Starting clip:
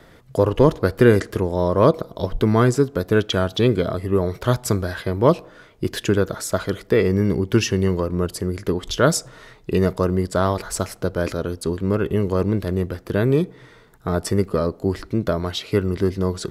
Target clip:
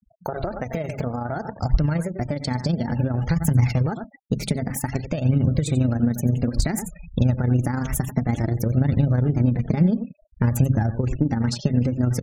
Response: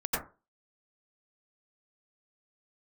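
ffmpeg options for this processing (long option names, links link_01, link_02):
-filter_complex "[0:a]highpass=frequency=45:poles=1,equalizer=frequency=2000:width_type=o:width=1.9:gain=-2,bandreject=frequency=50:width_type=h:width=6,bandreject=frequency=100:width_type=h:width=6,bandreject=frequency=150:width_type=h:width=6,bandreject=frequency=200:width_type=h:width=6,asetrate=59535,aresample=44100,tremolo=f=27:d=0.519,aecho=1:1:89:0.2,asplit=2[link_01][link_02];[link_02]acrusher=bits=5:mix=0:aa=0.5,volume=-4dB[link_03];[link_01][link_03]amix=inputs=2:normalize=0,alimiter=limit=-9dB:level=0:latency=1:release=150,flanger=delay=0.7:depth=4.5:regen=41:speed=0.56:shape=triangular,afftfilt=real='re*gte(hypot(re,im),0.01)':imag='im*gte(hypot(re,im),0.01)':win_size=1024:overlap=0.75,acompressor=threshold=-30dB:ratio=6,asubboost=boost=10:cutoff=170,volume=5.5dB"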